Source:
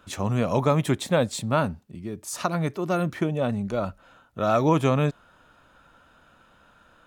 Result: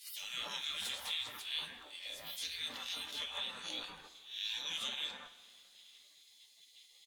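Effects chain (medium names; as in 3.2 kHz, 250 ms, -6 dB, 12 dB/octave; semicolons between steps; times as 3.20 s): reverse spectral sustain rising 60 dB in 0.32 s; 0.59–1.13 s: de-hum 52.87 Hz, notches 6; spectral gate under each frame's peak -25 dB weak; peaking EQ 3.5 kHz +13.5 dB 0.57 oct; compression 2.5:1, threshold -50 dBFS, peak gain reduction 17 dB; bands offset in time highs, lows 160 ms, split 1.8 kHz; two-slope reverb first 0.23 s, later 2.4 s, from -19 dB, DRR 3.5 dB; trim +5.5 dB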